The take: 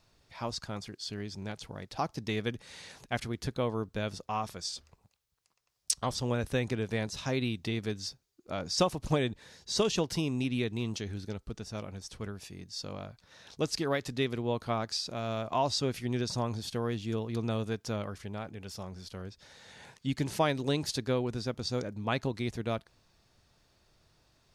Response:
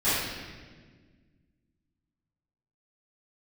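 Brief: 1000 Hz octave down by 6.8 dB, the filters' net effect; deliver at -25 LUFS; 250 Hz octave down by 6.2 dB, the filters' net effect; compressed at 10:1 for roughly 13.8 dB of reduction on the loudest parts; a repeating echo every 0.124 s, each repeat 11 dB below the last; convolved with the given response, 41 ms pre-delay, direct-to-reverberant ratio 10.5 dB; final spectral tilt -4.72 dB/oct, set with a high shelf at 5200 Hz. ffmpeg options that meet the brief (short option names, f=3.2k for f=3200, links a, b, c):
-filter_complex "[0:a]equalizer=f=250:t=o:g=-7.5,equalizer=f=1k:t=o:g=-8.5,highshelf=f=5.2k:g=-7,acompressor=threshold=-40dB:ratio=10,aecho=1:1:124|248|372:0.282|0.0789|0.0221,asplit=2[a][b];[1:a]atrim=start_sample=2205,adelay=41[c];[b][c]afir=irnorm=-1:irlink=0,volume=-25dB[d];[a][d]amix=inputs=2:normalize=0,volume=20dB"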